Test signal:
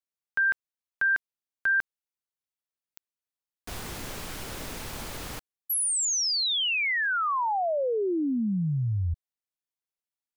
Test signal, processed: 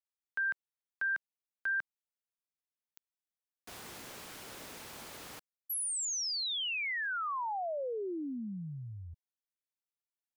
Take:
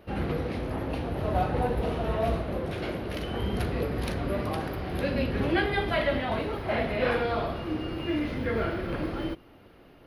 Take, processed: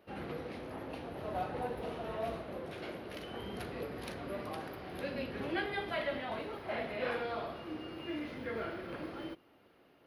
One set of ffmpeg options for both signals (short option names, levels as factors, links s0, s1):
-af "highpass=f=270:p=1,volume=0.376"